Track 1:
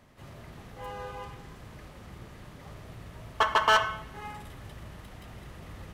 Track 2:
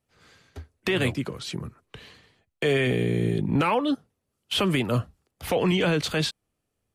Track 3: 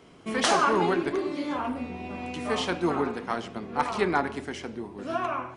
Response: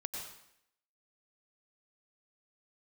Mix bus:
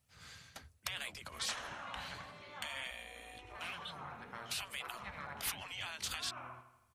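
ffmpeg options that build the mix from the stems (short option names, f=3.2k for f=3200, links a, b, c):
-filter_complex "[1:a]bass=f=250:g=4,treble=f=4k:g=4,acompressor=threshold=-25dB:ratio=6,volume=1.5dB[a];[2:a]aemphasis=mode=reproduction:type=50fm,bandreject=f=4.7k:w=7.8,adelay=1050,volume=-9.5dB,asplit=2[b][c];[c]volume=-12.5dB[d];[a][b]amix=inputs=2:normalize=0,highpass=41,acompressor=threshold=-33dB:ratio=3,volume=0dB[e];[d]aecho=0:1:81|162|243|324|405|486|567|648:1|0.55|0.303|0.166|0.0915|0.0503|0.0277|0.0152[f];[e][f]amix=inputs=2:normalize=0,afftfilt=real='re*lt(hypot(re,im),0.0501)':imag='im*lt(hypot(re,im),0.0501)':win_size=1024:overlap=0.75,equalizer=f=350:t=o:w=1.6:g=-12.5"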